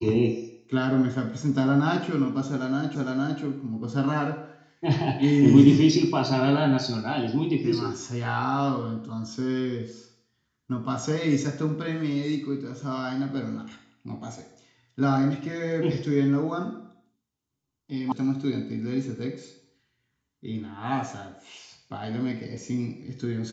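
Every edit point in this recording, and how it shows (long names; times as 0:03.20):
0:02.95: the same again, the last 0.46 s
0:18.12: cut off before it has died away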